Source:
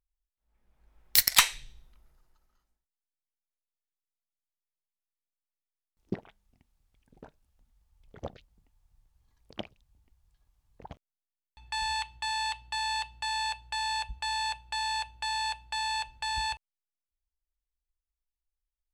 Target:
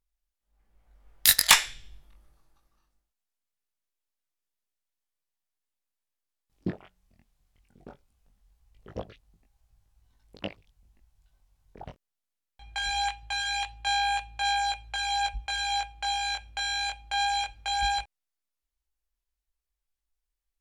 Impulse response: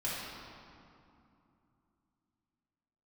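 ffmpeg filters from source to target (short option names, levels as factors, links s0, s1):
-af "flanger=delay=17:depth=2.9:speed=0.23,asetrate=40517,aresample=44100,volume=2"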